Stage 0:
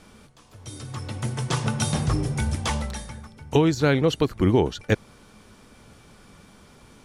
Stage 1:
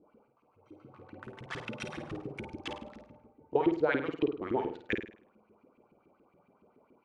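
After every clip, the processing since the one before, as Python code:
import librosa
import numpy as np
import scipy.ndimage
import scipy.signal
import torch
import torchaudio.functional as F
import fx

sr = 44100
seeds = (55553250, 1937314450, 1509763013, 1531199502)

y = fx.wiener(x, sr, points=25)
y = fx.filter_lfo_bandpass(y, sr, shape='saw_up', hz=7.1, low_hz=270.0, high_hz=2800.0, q=3.7)
y = fx.room_flutter(y, sr, wall_m=8.9, rt60_s=0.44)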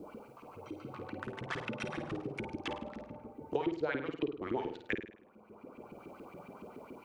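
y = fx.band_squash(x, sr, depth_pct=70)
y = F.gain(torch.from_numpy(y), -1.0).numpy()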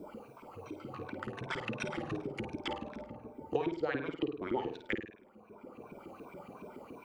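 y = fx.spec_ripple(x, sr, per_octave=1.6, drift_hz=-2.7, depth_db=9)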